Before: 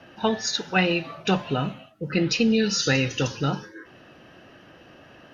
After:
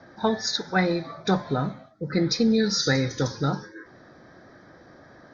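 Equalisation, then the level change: Butterworth band-stop 2800 Hz, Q 1.9; synth low-pass 5600 Hz, resonance Q 1.6; air absorption 76 m; 0.0 dB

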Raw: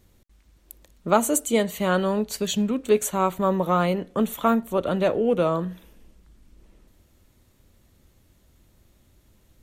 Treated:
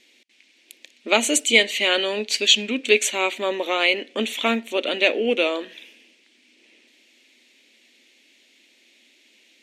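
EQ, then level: brick-wall FIR high-pass 220 Hz; LPF 5200 Hz 12 dB/oct; resonant high shelf 1700 Hz +11.5 dB, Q 3; +1.0 dB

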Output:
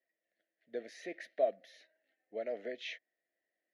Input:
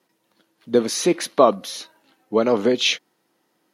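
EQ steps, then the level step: double band-pass 1100 Hz, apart 1.5 oct; bell 950 Hz -14 dB 0.79 oct; -7.0 dB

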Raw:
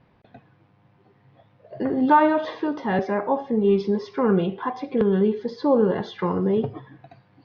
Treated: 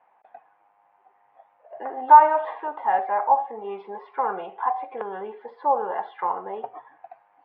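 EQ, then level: resonant high-pass 800 Hz, resonance Q 4.9; LPF 2600 Hz 24 dB/oct; air absorption 80 m; -4.0 dB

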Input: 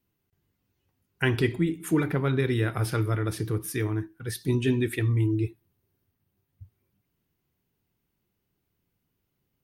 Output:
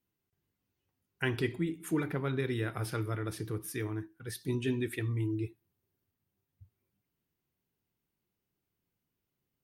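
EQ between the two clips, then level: low shelf 120 Hz -5 dB; -6.5 dB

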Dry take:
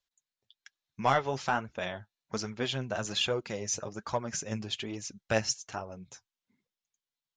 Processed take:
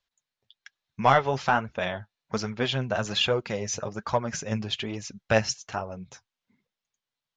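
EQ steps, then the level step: air absorption 100 m; bell 320 Hz -4.5 dB 0.52 oct; +7.0 dB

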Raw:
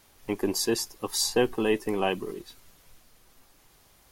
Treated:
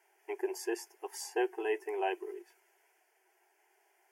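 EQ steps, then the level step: brick-wall FIR high-pass 340 Hz; LPF 2900 Hz 6 dB/oct; fixed phaser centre 790 Hz, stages 8; -3.0 dB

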